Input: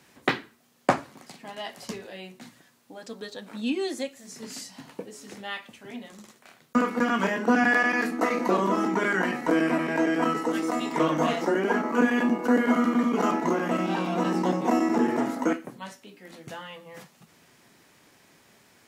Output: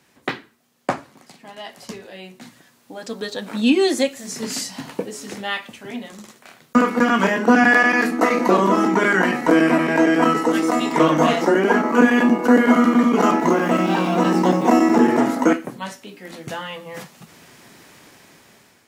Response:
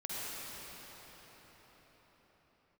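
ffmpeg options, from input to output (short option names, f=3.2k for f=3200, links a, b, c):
-filter_complex "[0:a]dynaudnorm=f=690:g=5:m=15.5dB,asettb=1/sr,asplit=3[a][b][c];[a]atrim=end=13.414[d];[b]atrim=start=13.41:end=15.07,asetpts=PTS-STARTPTS,afade=t=in:d=0.004:c=qsin,afade=t=out:st=1.656:d=0.004:c=qsin,aeval=exprs='val(0)*gte(abs(val(0)),0.0133)':c=same[e];[c]atrim=start=15.066[f];[d][e]acrossfade=d=0.004:c1=hsin:c2=qsin[g];[g][f]acrossfade=d=0.004:c1=qsin:c2=hsin,volume=-1dB"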